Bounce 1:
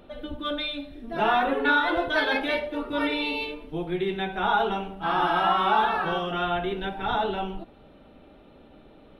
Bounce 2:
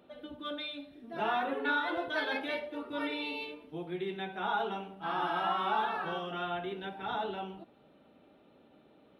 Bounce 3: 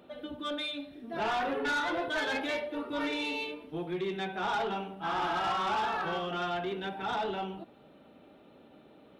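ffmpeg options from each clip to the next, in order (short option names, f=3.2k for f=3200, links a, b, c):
-af "highpass=130,volume=-9dB"
-af "asoftclip=type=tanh:threshold=-31.5dB,volume=5dB"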